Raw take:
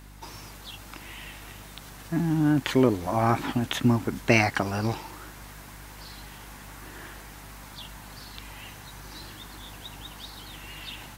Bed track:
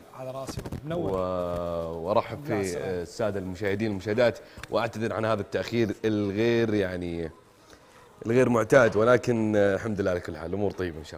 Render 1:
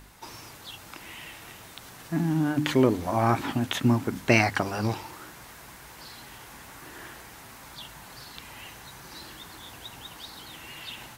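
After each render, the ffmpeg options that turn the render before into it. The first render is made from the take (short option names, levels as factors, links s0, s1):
-af "bandreject=f=50:t=h:w=4,bandreject=f=100:t=h:w=4,bandreject=f=150:t=h:w=4,bandreject=f=200:t=h:w=4,bandreject=f=250:t=h:w=4,bandreject=f=300:t=h:w=4"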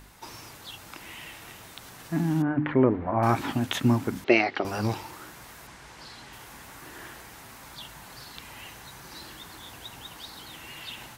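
-filter_complex "[0:a]asettb=1/sr,asplit=3[s0][s1][s2];[s0]atrim=end=2.424[s3];[s1]atrim=start=2.42:end=3.23,asetpts=PTS-STARTPTS,afade=t=in:d=0.004:c=qsin,afade=t=out:st=0.806:d=0.004:c=qsin,lowpass=f=2000:w=0.5412,lowpass=f=2000:w=1.3066[s4];[s2]atrim=start=3.226[s5];[s3][s4]acrossfade=d=0.004:c1=hsin:c2=qsin[s6];[s6][s5]acrossfade=d=0.004:c1=qsin:c2=hsin,asettb=1/sr,asplit=3[s7][s8][s9];[s7]atrim=end=4.244[s10];[s8]atrim=start=4.24:end=4.65,asetpts=PTS-STARTPTS,afade=t=in:d=0.004:c=qsin,afade=t=out:st=0.406:d=0.004:c=qsin,highpass=320,equalizer=f=370:t=q:w=4:g=9,equalizer=f=1000:t=q:w=4:g=-8,equalizer=f=1600:t=q:w=4:g=-7,lowpass=f=4100:w=0.5412,lowpass=f=4100:w=1.3066[s11];[s9]atrim=start=4.646[s12];[s10][s11]acrossfade=d=0.004:c1=hsin:c2=qsin[s13];[s13][s12]acrossfade=d=0.004:c1=qsin:c2=hsin,asettb=1/sr,asplit=3[s14][s15][s16];[s14]atrim=end=5.674[s17];[s15]atrim=start=5.67:end=6.33,asetpts=PTS-STARTPTS,afade=t=in:d=0.004:c=qsin,afade=t=out:st=0.656:d=0.004:c=qsin,lowpass=7900[s18];[s16]atrim=start=6.326[s19];[s17][s18]acrossfade=d=0.004:c1=hsin:c2=qsin[s20];[s20][s19]acrossfade=d=0.004:c1=qsin:c2=hsin"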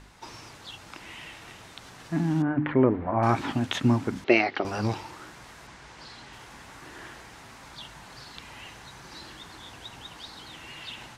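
-af "lowpass=7200"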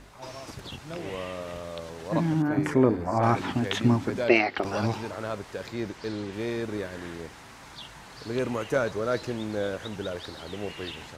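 -filter_complex "[1:a]volume=0.422[s0];[0:a][s0]amix=inputs=2:normalize=0"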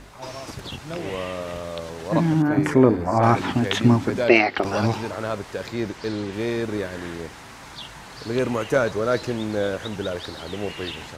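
-af "volume=1.88,alimiter=limit=0.891:level=0:latency=1"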